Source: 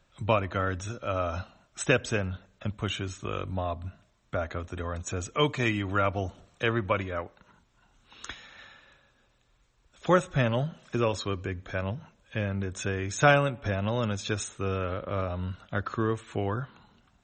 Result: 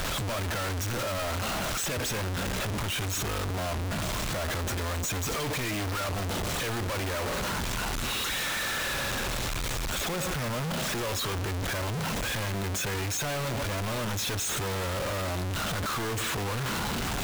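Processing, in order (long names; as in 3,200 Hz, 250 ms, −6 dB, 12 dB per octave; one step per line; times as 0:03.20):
sign of each sample alone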